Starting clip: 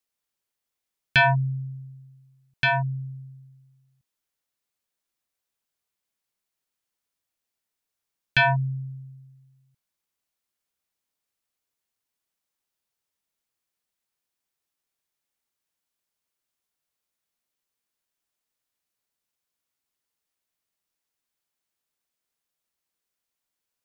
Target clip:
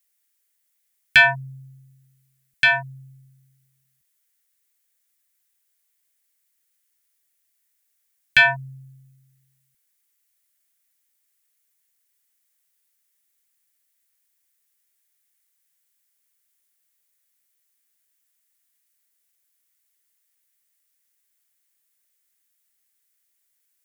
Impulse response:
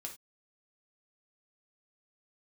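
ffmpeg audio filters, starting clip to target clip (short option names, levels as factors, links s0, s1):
-af "equalizer=f=125:t=o:w=1:g=-11,equalizer=f=1000:t=o:w=1:g=-4,equalizer=f=2000:t=o:w=1:g=12,equalizer=f=4000:t=o:w=1:g=-6,aexciter=amount=2.6:drive=7.2:freq=3300"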